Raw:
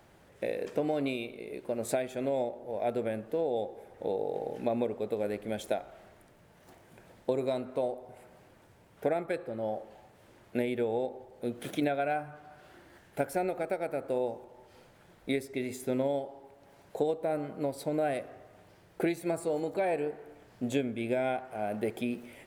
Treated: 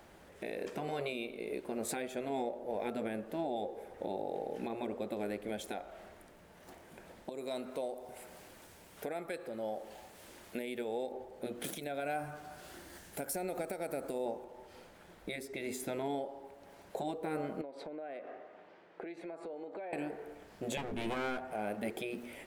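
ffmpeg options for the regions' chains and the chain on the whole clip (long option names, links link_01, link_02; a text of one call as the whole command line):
ffmpeg -i in.wav -filter_complex "[0:a]asettb=1/sr,asplit=3[link_01][link_02][link_03];[link_01]atrim=end=7.294[link_04];[link_02]atrim=start=7.29:end=11.12,asetpts=PTS-STARTPTS,afade=type=in:duration=0.004:curve=qsin,afade=type=out:start_time=3.826:duration=0.004:curve=qsin,highshelf=frequency=3000:gain=11.5,acompressor=threshold=-50dB:ratio=1.5:attack=3.2:release=140:knee=1:detection=peak[link_05];[link_03]atrim=start=11.116[link_06];[link_04][link_05]acrossfade=duration=0.004:curve1=hsin:curve2=qsin[link_07];[link_07][link_06]acrossfade=duration=0.004:curve1=qsin:curve2=hsin,asettb=1/sr,asplit=3[link_08][link_09][link_10];[link_08]atrim=end=11.644[link_11];[link_09]atrim=start=11.64:end=14.26,asetpts=PTS-STARTPTS,afade=type=in:duration=0.004:curve=qsin,afade=type=out:start_time=2.616:duration=0.004:curve=qsin,bass=frequency=250:gain=4,treble=frequency=4000:gain=12,acompressor=threshold=-35dB:ratio=2.5:attack=3.2:release=140:knee=1:detection=peak[link_12];[link_10]atrim=start=14.256[link_13];[link_11][link_12]acrossfade=duration=0.004:curve1=hsin:curve2=qsin[link_14];[link_14][link_13]acrossfade=duration=0.004:curve1=qsin:curve2=hsin,asettb=1/sr,asplit=3[link_15][link_16][link_17];[link_15]atrim=end=17.614[link_18];[link_16]atrim=start=17.61:end=19.93,asetpts=PTS-STARTPTS,afade=type=in:duration=0.004:curve=qsin,afade=type=out:start_time=2.316:duration=0.004:curve=qsin,highpass=280,lowpass=2700,acompressor=threshold=-43dB:ratio=8:attack=3.2:release=140:knee=1:detection=peak[link_19];[link_17]atrim=start=19.926[link_20];[link_18][link_19]acrossfade=duration=0.004:curve1=hsin:curve2=qsin[link_21];[link_21][link_20]acrossfade=duration=0.004:curve1=qsin:curve2=hsin,asettb=1/sr,asplit=3[link_22][link_23][link_24];[link_22]atrim=end=20.774[link_25];[link_23]atrim=start=20.77:end=21.53,asetpts=PTS-STARTPTS,afade=type=in:duration=0.004:curve=qsin,afade=type=out:start_time=0.756:duration=0.004:curve=qsin,lowshelf=frequency=220:gain=9,asplit=2[link_26][link_27];[link_27]adelay=12,volume=-9dB[link_28];[link_26][link_28]amix=inputs=2:normalize=0,atrim=end_sample=33516,aeval=exprs='clip(val(0),-1,0.0168)':channel_layout=same[link_29];[link_24]atrim=start=21.526[link_30];[link_25][link_29]acrossfade=duration=0.004:curve1=hsin:curve2=qsin[link_31];[link_31][link_30]acrossfade=duration=0.004:curve1=qsin:curve2=hsin,afftfilt=real='re*lt(hypot(re,im),0.178)':imag='im*lt(hypot(re,im),0.178)':win_size=1024:overlap=0.75,equalizer=frequency=120:width_type=o:width=0.44:gain=-12,alimiter=level_in=5dB:limit=-24dB:level=0:latency=1:release=302,volume=-5dB,volume=2.5dB" out.wav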